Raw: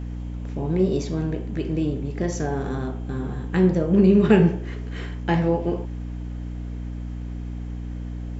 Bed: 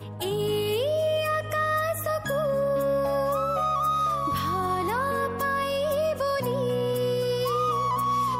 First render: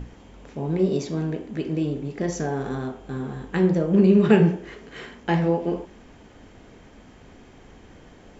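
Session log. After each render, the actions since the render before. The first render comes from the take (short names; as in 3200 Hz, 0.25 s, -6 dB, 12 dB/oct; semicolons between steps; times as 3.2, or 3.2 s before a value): notches 60/120/180/240/300/360 Hz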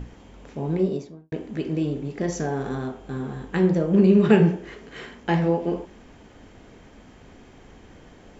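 0.69–1.32 studio fade out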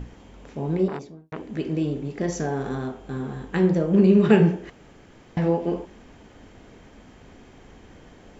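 0.88–1.5 core saturation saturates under 1100 Hz; 4.7–5.37 room tone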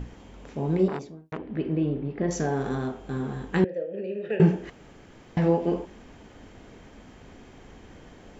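1.37–2.31 air absorption 350 m; 3.64–4.4 vowel filter e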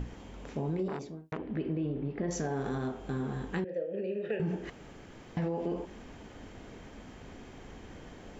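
limiter -19.5 dBFS, peak gain reduction 11.5 dB; compressor 2:1, threshold -33 dBFS, peak gain reduction 6 dB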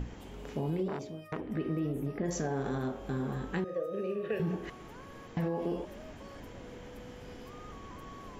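add bed -26.5 dB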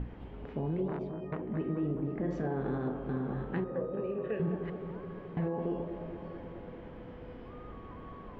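air absorption 440 m; analogue delay 0.214 s, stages 2048, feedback 75%, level -9 dB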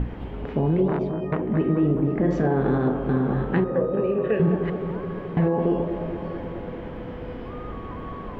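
gain +12 dB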